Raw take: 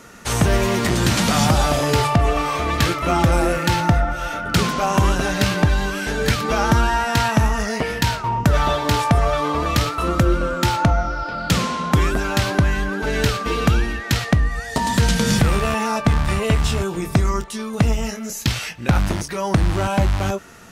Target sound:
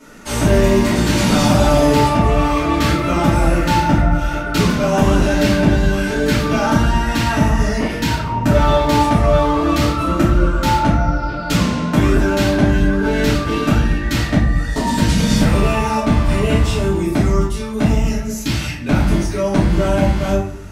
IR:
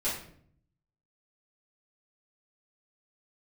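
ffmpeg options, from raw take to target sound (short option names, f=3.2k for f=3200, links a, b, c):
-filter_complex "[0:a]equalizer=f=300:w=3.9:g=9[a];[1:a]atrim=start_sample=2205[b];[a][b]afir=irnorm=-1:irlink=0,volume=-5.5dB"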